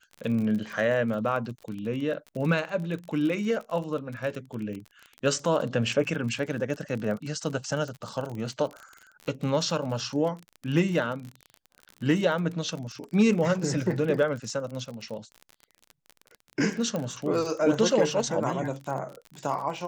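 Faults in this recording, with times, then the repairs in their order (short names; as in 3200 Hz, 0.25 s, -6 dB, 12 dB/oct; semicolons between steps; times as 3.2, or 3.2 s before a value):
crackle 39/s -33 dBFS
16.96 pop -18 dBFS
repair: de-click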